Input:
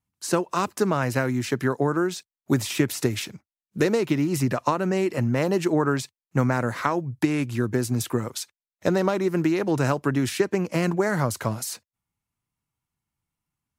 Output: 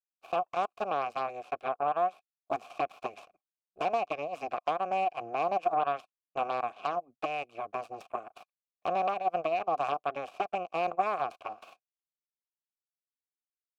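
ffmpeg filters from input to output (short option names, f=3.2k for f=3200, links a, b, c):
-filter_complex "[0:a]aeval=exprs='0.422*(cos(1*acos(clip(val(0)/0.422,-1,1)))-cos(1*PI/2))+0.15*(cos(6*acos(clip(val(0)/0.422,-1,1)))-cos(6*PI/2))+0.0531*(cos(7*acos(clip(val(0)/0.422,-1,1)))-cos(7*PI/2))':c=same,asplit=3[a][b][c];[a]bandpass=f=730:t=q:w=8,volume=0dB[d];[b]bandpass=f=1.09k:t=q:w=8,volume=-6dB[e];[c]bandpass=f=2.44k:t=q:w=8,volume=-9dB[f];[d][e][f]amix=inputs=3:normalize=0"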